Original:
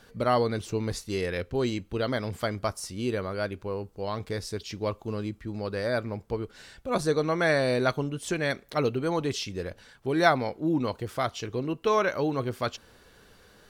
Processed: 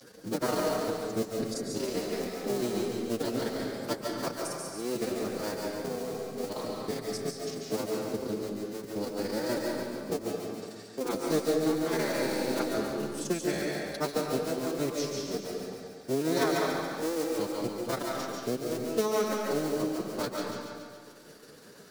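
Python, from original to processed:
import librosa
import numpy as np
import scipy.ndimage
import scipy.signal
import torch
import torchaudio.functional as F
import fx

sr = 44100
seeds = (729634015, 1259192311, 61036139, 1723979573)

p1 = fx.cycle_switch(x, sr, every=2, mode='muted')
p2 = scipy.signal.sosfilt(scipy.signal.butter(2, 150.0, 'highpass', fs=sr, output='sos'), p1)
p3 = fx.low_shelf(p2, sr, hz=230.0, db=-6.0)
p4 = fx.transient(p3, sr, attack_db=5, sustain_db=-11)
p5 = fx.stretch_vocoder(p4, sr, factor=1.6)
p6 = fx.band_shelf(p5, sr, hz=1500.0, db=-9.5, octaves=2.8)
p7 = p6 + fx.echo_thinned(p6, sr, ms=140, feedback_pct=53, hz=940.0, wet_db=-7, dry=0)
p8 = fx.rev_freeverb(p7, sr, rt60_s=1.4, hf_ratio=0.6, predelay_ms=105, drr_db=0.0)
y = fx.band_squash(p8, sr, depth_pct=40)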